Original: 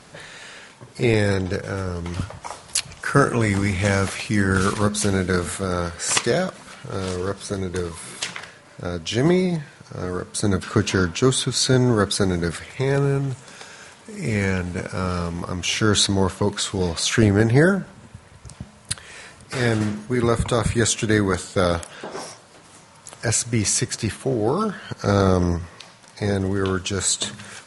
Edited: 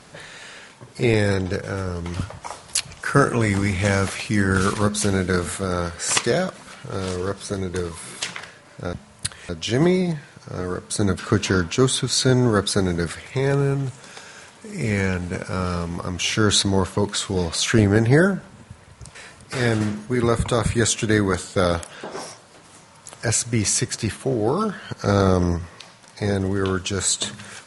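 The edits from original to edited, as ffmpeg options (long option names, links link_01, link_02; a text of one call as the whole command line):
ffmpeg -i in.wav -filter_complex "[0:a]asplit=4[link_01][link_02][link_03][link_04];[link_01]atrim=end=8.932[link_05];[link_02]atrim=start=18.588:end=19.152[link_06];[link_03]atrim=start=8.928:end=18.592[link_07];[link_04]atrim=start=19.148[link_08];[link_05][link_06]acrossfade=duration=0.004:curve1=hsin:curve2=hsin[link_09];[link_09][link_07]acrossfade=duration=0.004:curve1=hsin:curve2=hsin[link_10];[link_10][link_08]acrossfade=duration=0.004:curve1=hsin:curve2=hsin" out.wav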